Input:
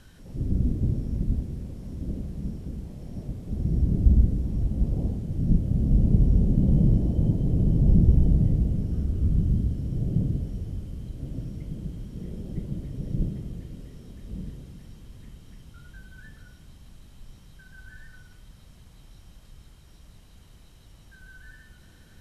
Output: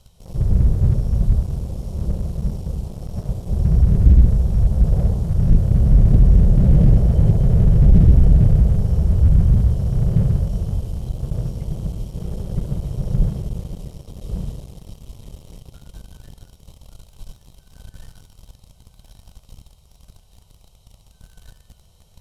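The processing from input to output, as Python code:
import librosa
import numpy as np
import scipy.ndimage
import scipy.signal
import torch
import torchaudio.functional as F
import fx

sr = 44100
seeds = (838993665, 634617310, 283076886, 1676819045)

y = fx.fixed_phaser(x, sr, hz=680.0, stages=4)
y = fx.echo_thinned(y, sr, ms=1148, feedback_pct=60, hz=270.0, wet_db=-9.0)
y = fx.leveller(y, sr, passes=2)
y = F.gain(torch.from_numpy(y), 4.0).numpy()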